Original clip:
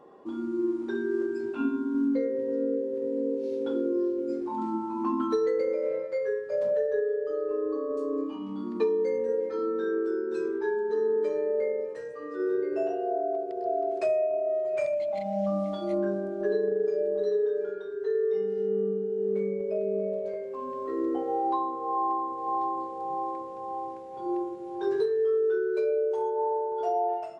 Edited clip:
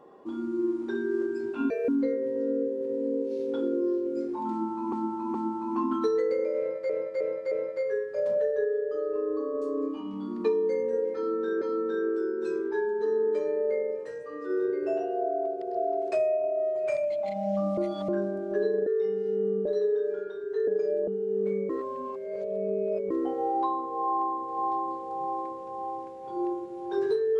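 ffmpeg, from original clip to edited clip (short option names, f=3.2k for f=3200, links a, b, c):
-filter_complex "[0:a]asplit=17[a][b][c][d][e][f][g][h][i][j][k][l][m][n][o][p][q];[a]atrim=end=1.704[r];[b]atrim=start=1.7:end=2.01,asetpts=PTS-STARTPTS,asetrate=74088,aresample=44100[s];[c]atrim=start=2.006:end=5.052[t];[d]atrim=start=4.628:end=5.052[u];[e]atrim=start=4.628:end=6.182[v];[f]atrim=start=5.868:end=6.182[w];[g]atrim=start=5.868:end=6.182[x];[h]atrim=start=5.868:end=9.972[y];[i]atrim=start=9.508:end=15.672[z];[j]atrim=start=15.668:end=15.982,asetpts=PTS-STARTPTS,areverse[aa];[k]atrim=start=15.978:end=16.762[ab];[l]atrim=start=18.178:end=18.972[ac];[m]atrim=start=17.158:end=18.182[ad];[n]atrim=start=16.758:end=17.162[ae];[o]atrim=start=18.968:end=19.592[af];[p]atrim=start=19.588:end=21.002,asetpts=PTS-STARTPTS,areverse[ag];[q]atrim=start=20.998[ah];[r][s]acrossfade=d=0.004:c1=hsin:c2=hsin[ai];[ai][t]acrossfade=d=0.004:c1=hsin:c2=hsin[aj];[aj][u]acrossfade=d=0.004:c1=hsin:c2=hsin[ak];[ak][v]acrossfade=d=0.004:c1=hsin:c2=hsin[al];[al][w]acrossfade=d=0.004:c1=hsin:c2=hsin[am];[am][x]acrossfade=d=0.004:c1=hsin:c2=hsin[an];[an][y]acrossfade=d=0.004:c1=hsin:c2=hsin[ao];[ao][z]acrossfade=d=0.004:c1=hsin:c2=hsin[ap];[ap][aa]acrossfade=d=0.004:c1=hsin:c2=hsin[aq];[aq][ab]acrossfade=d=0.004:c1=hsin:c2=hsin[ar];[ar][ac]acrossfade=d=0.004:c1=hsin:c2=hsin[as];[as][ad]acrossfade=d=0.004:c1=hsin:c2=hsin[at];[at][ae]acrossfade=d=0.004:c1=hsin:c2=hsin[au];[au][af]acrossfade=d=0.004:c1=hsin:c2=hsin[av];[av][ag]acrossfade=d=0.004:c1=hsin:c2=hsin[aw];[aw][ah]acrossfade=d=0.004:c1=hsin:c2=hsin"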